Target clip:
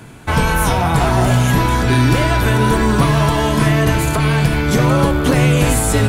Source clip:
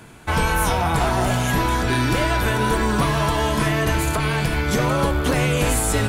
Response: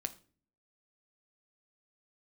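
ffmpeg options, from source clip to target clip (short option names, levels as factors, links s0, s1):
-filter_complex "[0:a]equalizer=f=140:w=0.45:g=4,asplit=2[s0][s1];[1:a]atrim=start_sample=2205[s2];[s1][s2]afir=irnorm=-1:irlink=0,volume=0.75[s3];[s0][s3]amix=inputs=2:normalize=0,volume=0.891"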